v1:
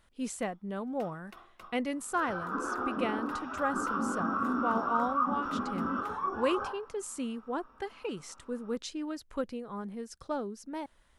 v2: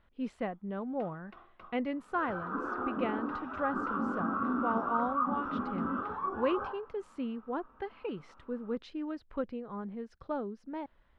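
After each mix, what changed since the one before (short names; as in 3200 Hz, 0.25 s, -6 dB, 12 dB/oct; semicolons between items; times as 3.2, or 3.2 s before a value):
master: add air absorption 360 m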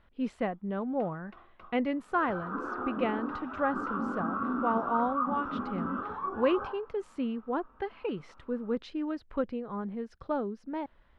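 speech +4.0 dB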